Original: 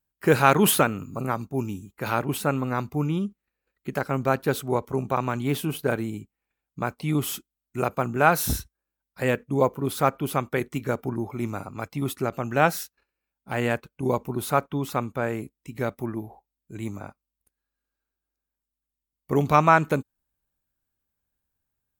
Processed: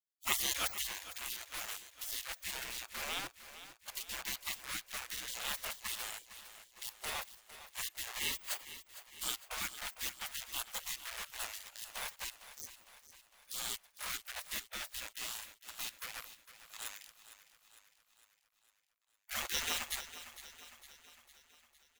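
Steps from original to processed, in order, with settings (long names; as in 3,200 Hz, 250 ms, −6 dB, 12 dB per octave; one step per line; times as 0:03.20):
0:06.19–0:07.23: phaser swept by the level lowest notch 260 Hz, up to 1,400 Hz, full sweep at −20 dBFS
0:08.31–0:09.38: low-shelf EQ 100 Hz −4.5 dB
in parallel at −9 dB: bit reduction 5 bits
0:12.34–0:12.79: on the sum: power curve on the samples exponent 3
gate on every frequency bin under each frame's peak −30 dB weak
on a send: repeating echo 456 ms, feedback 55%, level −13.5 dB
on the sum: level +3 dB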